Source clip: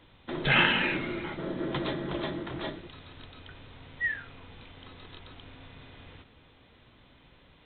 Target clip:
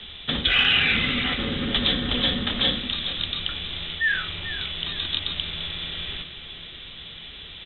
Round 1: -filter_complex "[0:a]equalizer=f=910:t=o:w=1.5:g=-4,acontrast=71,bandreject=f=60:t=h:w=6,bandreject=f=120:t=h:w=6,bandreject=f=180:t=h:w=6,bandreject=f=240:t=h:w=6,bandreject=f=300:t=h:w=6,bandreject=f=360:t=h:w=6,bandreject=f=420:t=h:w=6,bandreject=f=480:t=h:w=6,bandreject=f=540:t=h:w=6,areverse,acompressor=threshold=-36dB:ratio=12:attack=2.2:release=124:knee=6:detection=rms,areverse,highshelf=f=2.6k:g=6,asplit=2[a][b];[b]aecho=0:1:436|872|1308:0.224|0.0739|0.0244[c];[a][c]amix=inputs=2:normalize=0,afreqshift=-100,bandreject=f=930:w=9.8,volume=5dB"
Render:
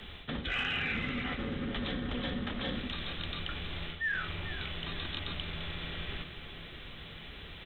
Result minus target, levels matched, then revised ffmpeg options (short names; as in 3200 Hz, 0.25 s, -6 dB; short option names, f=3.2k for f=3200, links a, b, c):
compressor: peak gain reduction +8 dB; 4000 Hz band -3.0 dB
-filter_complex "[0:a]equalizer=f=910:t=o:w=1.5:g=-4,acontrast=71,bandreject=f=60:t=h:w=6,bandreject=f=120:t=h:w=6,bandreject=f=180:t=h:w=6,bandreject=f=240:t=h:w=6,bandreject=f=300:t=h:w=6,bandreject=f=360:t=h:w=6,bandreject=f=420:t=h:w=6,bandreject=f=480:t=h:w=6,bandreject=f=540:t=h:w=6,areverse,acompressor=threshold=-27dB:ratio=12:attack=2.2:release=124:knee=6:detection=rms,areverse,lowpass=f=3.7k:t=q:w=4.4,highshelf=f=2.6k:g=6,asplit=2[a][b];[b]aecho=0:1:436|872|1308:0.224|0.0739|0.0244[c];[a][c]amix=inputs=2:normalize=0,afreqshift=-100,bandreject=f=930:w=9.8,volume=5dB"